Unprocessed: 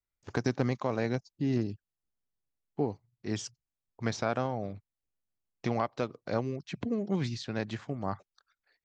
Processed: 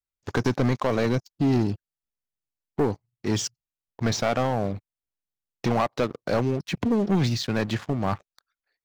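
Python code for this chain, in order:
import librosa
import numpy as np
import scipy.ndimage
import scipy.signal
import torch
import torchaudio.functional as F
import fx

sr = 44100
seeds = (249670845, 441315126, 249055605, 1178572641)

y = fx.leveller(x, sr, passes=3)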